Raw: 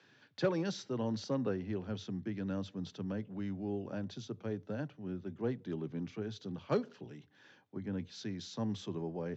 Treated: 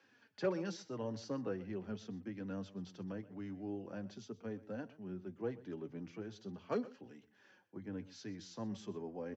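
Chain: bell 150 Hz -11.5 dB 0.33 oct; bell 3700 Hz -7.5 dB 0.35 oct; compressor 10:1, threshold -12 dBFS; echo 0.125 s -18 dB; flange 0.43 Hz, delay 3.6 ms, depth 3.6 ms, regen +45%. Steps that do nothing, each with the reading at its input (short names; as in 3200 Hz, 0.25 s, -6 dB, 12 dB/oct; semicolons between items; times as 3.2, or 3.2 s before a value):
compressor, threshold -12 dBFS: input peak -19.0 dBFS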